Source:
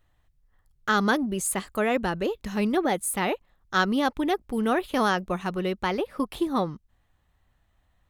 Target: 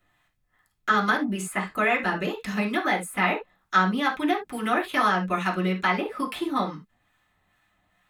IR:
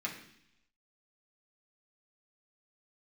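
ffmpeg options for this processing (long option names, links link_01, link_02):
-filter_complex "[0:a]acrossover=split=860[link_01][link_02];[link_01]aeval=exprs='val(0)*(1-0.5/2+0.5/2*cos(2*PI*2.3*n/s))':channel_layout=same[link_03];[link_02]aeval=exprs='val(0)*(1-0.5/2-0.5/2*cos(2*PI*2.3*n/s))':channel_layout=same[link_04];[link_03][link_04]amix=inputs=2:normalize=0,acrossover=split=900|2200[link_05][link_06][link_07];[link_05]acompressor=threshold=-31dB:ratio=4[link_08];[link_06]acompressor=threshold=-31dB:ratio=4[link_09];[link_07]acompressor=threshold=-45dB:ratio=4[link_10];[link_08][link_09][link_10]amix=inputs=3:normalize=0,lowshelf=frequency=380:gain=-8.5[link_11];[1:a]atrim=start_sample=2205,afade=type=out:start_time=0.13:duration=0.01,atrim=end_sample=6174[link_12];[link_11][link_12]afir=irnorm=-1:irlink=0,volume=8dB"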